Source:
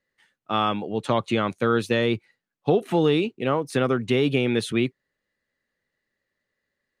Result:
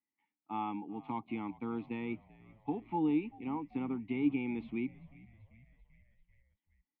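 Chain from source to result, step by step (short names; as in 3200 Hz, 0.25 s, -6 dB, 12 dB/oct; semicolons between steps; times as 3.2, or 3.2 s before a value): vowel filter u; bell 350 Hz -9.5 dB 0.74 oct; frequency-shifting echo 0.389 s, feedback 64%, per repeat -62 Hz, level -21.5 dB; harmonic-percussive split harmonic +4 dB; air absorption 410 m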